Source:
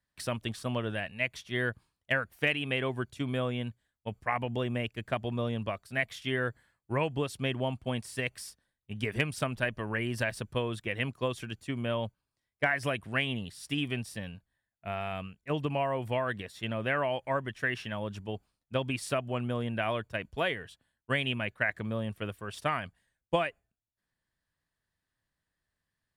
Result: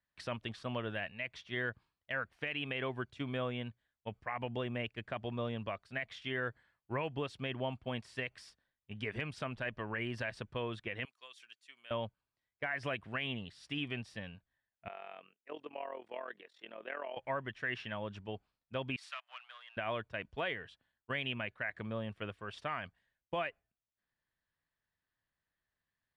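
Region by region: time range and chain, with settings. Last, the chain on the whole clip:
0:11.05–0:11.91: high-pass filter 450 Hz 6 dB per octave + first difference
0:14.88–0:17.17: four-pole ladder high-pass 280 Hz, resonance 30% + amplitude modulation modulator 42 Hz, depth 65%
0:18.96–0:19.77: gain on one half-wave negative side −7 dB + Bessel high-pass filter 1,500 Hz, order 6
whole clip: low-pass filter 3,700 Hz 12 dB per octave; low-shelf EQ 470 Hz −5.5 dB; brickwall limiter −24 dBFS; level −2 dB

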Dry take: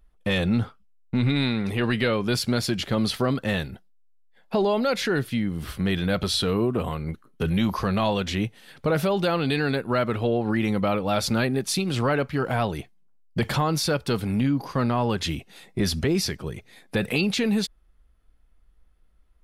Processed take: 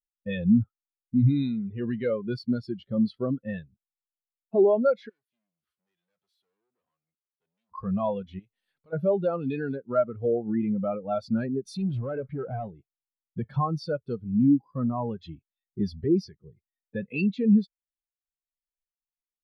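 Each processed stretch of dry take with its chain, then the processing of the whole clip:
0:05.09–0:07.72: hard clipping −29 dBFS + high-pass filter 280 Hz 6 dB per octave + every bin compressed towards the loudest bin 2 to 1
0:08.39–0:08.93: downward compressor 2.5 to 1, threshold −30 dBFS + every bin compressed towards the loudest bin 2 to 1
0:11.65–0:12.68: downward compressor 3 to 1, threshold −28 dBFS + leveller curve on the samples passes 3
whole clip: low-shelf EQ 460 Hz −3.5 dB; every bin expanded away from the loudest bin 2.5 to 1

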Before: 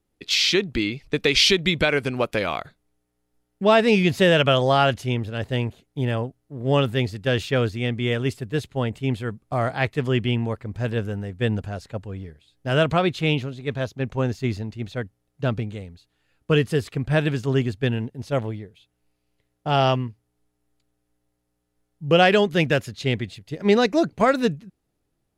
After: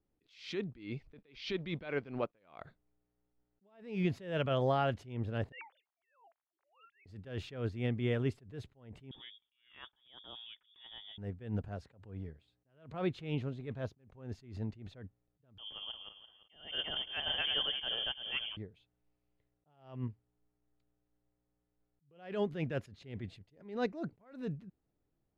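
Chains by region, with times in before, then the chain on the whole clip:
0:01.14–0:02.61: mu-law and A-law mismatch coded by A + low-pass filter 5,500 Hz 24 dB per octave + parametric band 67 Hz −8 dB 1.3 octaves
0:05.52–0:07.06: three sine waves on the formant tracks + Butterworth high-pass 730 Hz
0:09.11–0:11.18: high-pass filter 52 Hz + downward compressor 4 to 1, threshold −35 dBFS + voice inversion scrambler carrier 3,500 Hz
0:11.68–0:12.94: high-pass filter 47 Hz 24 dB per octave + downward compressor 2.5 to 1, threshold −29 dBFS
0:15.58–0:18.57: feedback delay that plays each chunk backwards 171 ms, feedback 44%, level −4 dB + voice inversion scrambler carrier 3,300 Hz
whole clip: low-pass filter 1,400 Hz 6 dB per octave; downward compressor, threshold −20 dBFS; level that may rise only so fast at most 120 dB per second; level −6.5 dB

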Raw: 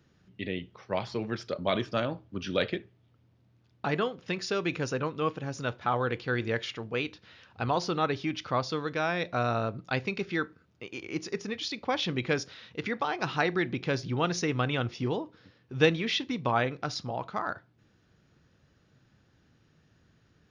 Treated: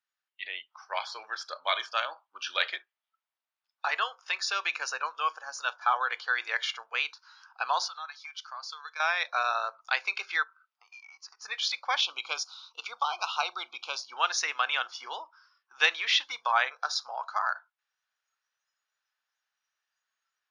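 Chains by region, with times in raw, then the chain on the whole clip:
0:07.88–0:09.00: noise gate −35 dBFS, range −6 dB + downward compressor 12 to 1, threshold −31 dBFS + high-pass filter 1,500 Hz 6 dB per octave
0:10.43–0:11.42: low-pass filter 5,800 Hz 24 dB per octave + downward compressor 16 to 1, threshold −43 dBFS
0:12.01–0:14.12: Butterworth band-reject 1,800 Hz, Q 1.6 + parametric band 480 Hz −2.5 dB 1 octave
whole clip: high-pass filter 890 Hz 24 dB per octave; noise reduction from a noise print of the clip's start 18 dB; automatic gain control gain up to 5.5 dB

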